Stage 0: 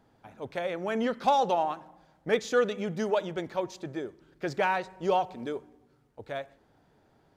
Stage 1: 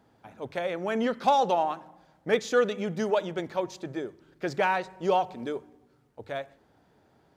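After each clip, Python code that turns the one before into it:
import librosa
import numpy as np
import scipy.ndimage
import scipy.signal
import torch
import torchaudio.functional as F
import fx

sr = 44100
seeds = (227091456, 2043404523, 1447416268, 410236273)

y = scipy.signal.sosfilt(scipy.signal.butter(2, 45.0, 'highpass', fs=sr, output='sos'), x)
y = fx.hum_notches(y, sr, base_hz=50, count=3)
y = F.gain(torch.from_numpy(y), 1.5).numpy()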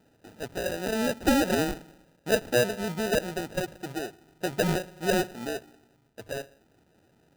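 y = fx.high_shelf(x, sr, hz=4600.0, db=-9.5)
y = fx.sample_hold(y, sr, seeds[0], rate_hz=1100.0, jitter_pct=0)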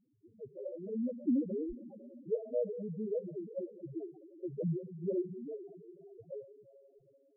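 y = fx.rev_schroeder(x, sr, rt60_s=3.9, comb_ms=29, drr_db=8.5)
y = fx.spec_topn(y, sr, count=2)
y = F.gain(torch.from_numpy(y), -4.0).numpy()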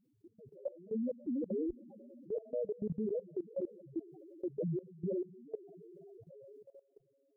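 y = fx.level_steps(x, sr, step_db=20)
y = F.gain(torch.from_numpy(y), 5.5).numpy()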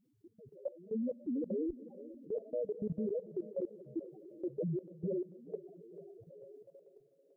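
y = fx.echo_thinned(x, sr, ms=442, feedback_pct=68, hz=310.0, wet_db=-13.5)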